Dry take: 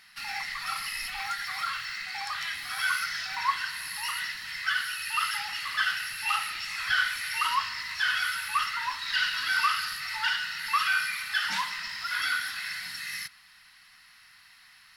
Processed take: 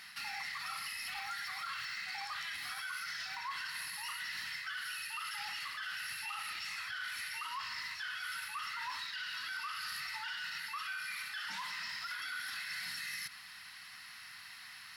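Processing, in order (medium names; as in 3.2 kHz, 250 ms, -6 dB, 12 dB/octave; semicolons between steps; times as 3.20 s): high-pass 79 Hz; reverse; compression 10:1, threshold -38 dBFS, peak gain reduction 17.5 dB; reverse; peak limiter -37 dBFS, peak gain reduction 9 dB; trim +4.5 dB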